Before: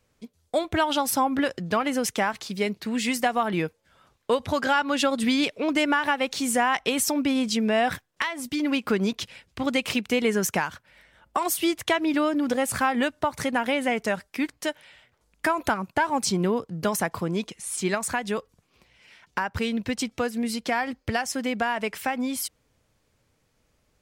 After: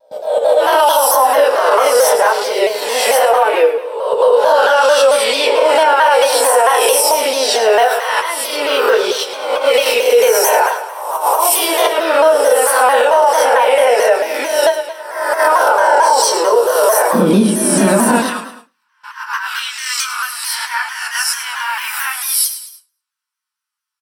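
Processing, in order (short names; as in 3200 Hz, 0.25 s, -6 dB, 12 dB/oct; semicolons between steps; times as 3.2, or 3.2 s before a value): spectral swells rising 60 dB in 1.02 s; steep high-pass 430 Hz 48 dB/oct, from 17.12 s 210 Hz, from 18.15 s 1100 Hz; dynamic EQ 6900 Hz, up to -4 dB, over -47 dBFS, Q 5.6; auto swell 0.106 s; feedback echo 0.107 s, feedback 45%, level -11 dB; gate with hold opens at -36 dBFS; reverb RT60 0.20 s, pre-delay 3 ms, DRR -6.5 dB; maximiser +1 dB; shaped vibrato saw down 4.5 Hz, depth 100 cents; gain -1.5 dB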